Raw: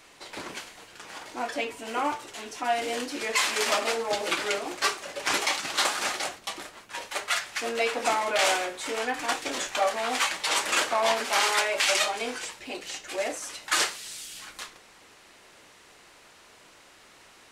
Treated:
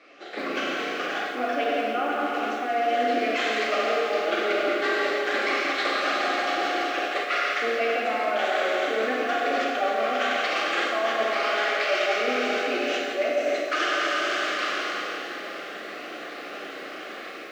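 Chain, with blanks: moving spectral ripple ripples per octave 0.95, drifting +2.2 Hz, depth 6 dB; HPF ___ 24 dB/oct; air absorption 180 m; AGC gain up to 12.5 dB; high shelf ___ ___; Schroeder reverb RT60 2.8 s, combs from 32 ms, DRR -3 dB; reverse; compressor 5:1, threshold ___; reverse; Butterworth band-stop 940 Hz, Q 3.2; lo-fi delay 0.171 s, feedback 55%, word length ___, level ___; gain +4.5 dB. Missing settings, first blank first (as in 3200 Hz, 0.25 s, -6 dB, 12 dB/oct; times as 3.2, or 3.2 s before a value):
250 Hz, 2800 Hz, -9 dB, -28 dBFS, 9-bit, -10 dB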